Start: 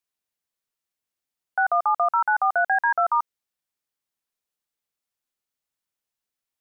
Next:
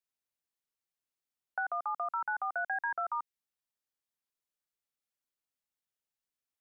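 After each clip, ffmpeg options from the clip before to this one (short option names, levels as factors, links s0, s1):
-filter_complex "[0:a]acrossover=split=390|1500[s0][s1][s2];[s0]acompressor=threshold=0.00282:ratio=4[s3];[s1]acompressor=threshold=0.0282:ratio=4[s4];[s2]acompressor=threshold=0.0355:ratio=4[s5];[s3][s4][s5]amix=inputs=3:normalize=0,volume=0.447"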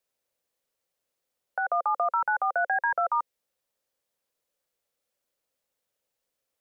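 -af "equalizer=f=530:w=2.5:g=13,alimiter=level_in=1.12:limit=0.0631:level=0:latency=1:release=213,volume=0.891,volume=2.51"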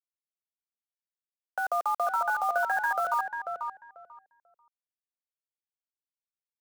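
-filter_complex "[0:a]acrusher=bits=6:mix=0:aa=0.000001,asplit=2[s0][s1];[s1]adelay=491,lowpass=f=1700:p=1,volume=0.562,asplit=2[s2][s3];[s3]adelay=491,lowpass=f=1700:p=1,volume=0.19,asplit=2[s4][s5];[s5]adelay=491,lowpass=f=1700:p=1,volume=0.19[s6];[s0][s2][s4][s6]amix=inputs=4:normalize=0,volume=0.794"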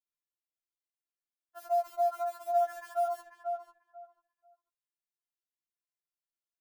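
-af "afftfilt=real='re*4*eq(mod(b,16),0)':imag='im*4*eq(mod(b,16),0)':win_size=2048:overlap=0.75,volume=0.631"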